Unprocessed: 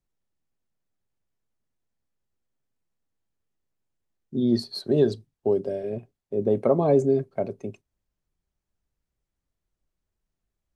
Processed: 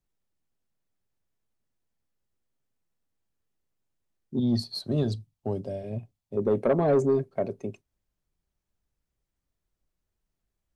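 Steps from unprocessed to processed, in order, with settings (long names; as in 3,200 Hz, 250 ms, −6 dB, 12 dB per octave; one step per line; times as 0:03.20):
0:04.39–0:06.37: graphic EQ with 15 bands 100 Hz +7 dB, 400 Hz −11 dB, 1,600 Hz −7 dB
soft clipping −15 dBFS, distortion −15 dB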